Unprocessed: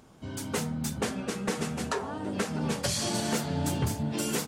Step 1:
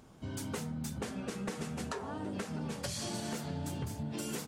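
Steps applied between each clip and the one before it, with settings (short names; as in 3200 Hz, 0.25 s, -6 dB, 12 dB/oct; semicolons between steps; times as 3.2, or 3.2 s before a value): low shelf 180 Hz +3.5 dB; compressor, threshold -32 dBFS, peak gain reduction 10.5 dB; gain -3 dB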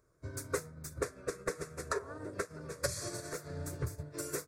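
fixed phaser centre 820 Hz, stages 6; upward expander 2.5:1, over -51 dBFS; gain +9.5 dB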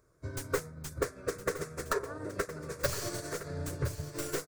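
tracing distortion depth 0.14 ms; echo 1.014 s -12.5 dB; gain +3.5 dB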